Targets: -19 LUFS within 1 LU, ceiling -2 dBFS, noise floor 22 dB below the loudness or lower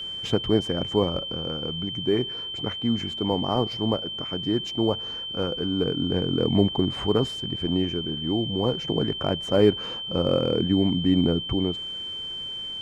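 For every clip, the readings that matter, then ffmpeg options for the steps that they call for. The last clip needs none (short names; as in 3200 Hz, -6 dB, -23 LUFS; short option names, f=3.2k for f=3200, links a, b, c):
steady tone 3100 Hz; tone level -31 dBFS; loudness -25.0 LUFS; peak -6.5 dBFS; loudness target -19.0 LUFS
-> -af "bandreject=f=3.1k:w=30"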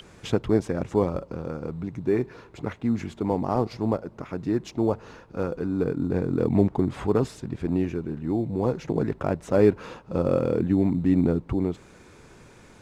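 steady tone none; loudness -26.0 LUFS; peak -7.0 dBFS; loudness target -19.0 LUFS
-> -af "volume=7dB,alimiter=limit=-2dB:level=0:latency=1"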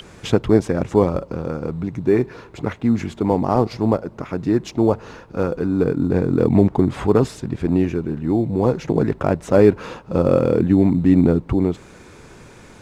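loudness -19.5 LUFS; peak -2.0 dBFS; noise floor -44 dBFS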